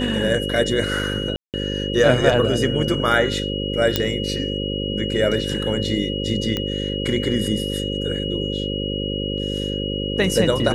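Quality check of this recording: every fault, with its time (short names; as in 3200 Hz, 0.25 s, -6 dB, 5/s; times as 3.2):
buzz 50 Hz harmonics 11 -26 dBFS
tone 2900 Hz -28 dBFS
1.36–1.54 gap 0.178 s
3.96 pop -2 dBFS
6.57 pop -10 dBFS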